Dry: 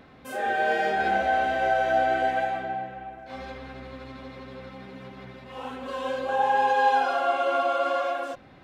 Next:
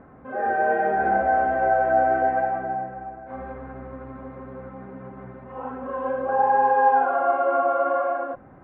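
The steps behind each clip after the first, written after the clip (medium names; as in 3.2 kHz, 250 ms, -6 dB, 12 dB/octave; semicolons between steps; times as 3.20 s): low-pass 1.5 kHz 24 dB/octave; trim +3.5 dB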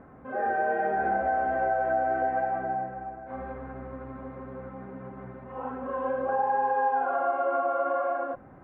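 compression 3:1, threshold -22 dBFS, peak gain reduction 7 dB; trim -2 dB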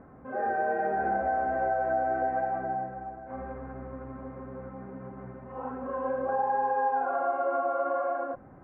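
distance through air 410 m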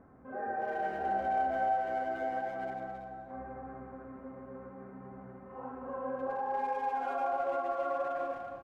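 speakerphone echo 250 ms, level -7 dB; gated-style reverb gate 370 ms flat, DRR 5.5 dB; trim -7 dB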